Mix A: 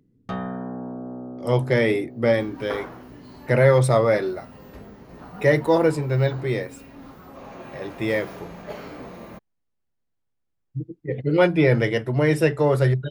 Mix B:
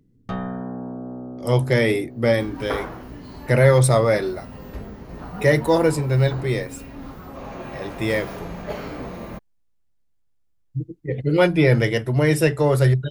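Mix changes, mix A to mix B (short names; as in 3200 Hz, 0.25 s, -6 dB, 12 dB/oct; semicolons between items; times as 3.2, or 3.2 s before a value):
speech: add high shelf 4800 Hz +11 dB; second sound +4.5 dB; master: add low shelf 78 Hz +12 dB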